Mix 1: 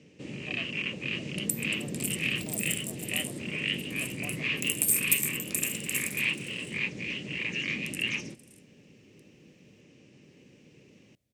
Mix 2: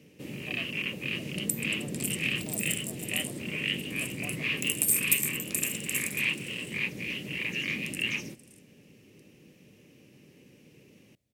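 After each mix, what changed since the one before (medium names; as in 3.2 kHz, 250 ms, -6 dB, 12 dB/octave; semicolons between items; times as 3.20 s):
first sound: remove steep low-pass 8 kHz 36 dB/octave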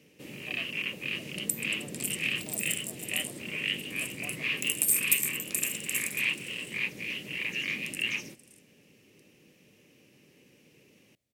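master: add bass shelf 360 Hz -8 dB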